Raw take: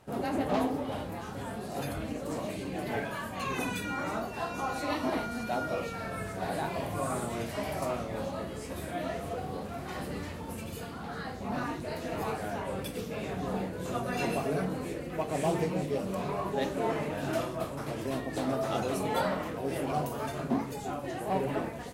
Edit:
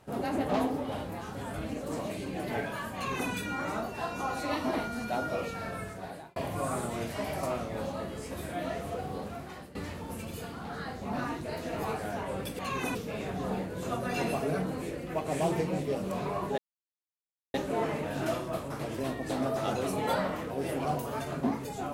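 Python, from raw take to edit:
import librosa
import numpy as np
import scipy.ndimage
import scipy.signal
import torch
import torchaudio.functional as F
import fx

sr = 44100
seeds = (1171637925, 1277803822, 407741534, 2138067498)

y = fx.edit(x, sr, fx.cut(start_s=1.54, length_s=0.39),
    fx.duplicate(start_s=3.34, length_s=0.36, to_s=12.98),
    fx.fade_out_span(start_s=6.08, length_s=0.67),
    fx.fade_out_to(start_s=9.66, length_s=0.48, floor_db=-17.5),
    fx.insert_silence(at_s=16.61, length_s=0.96), tone=tone)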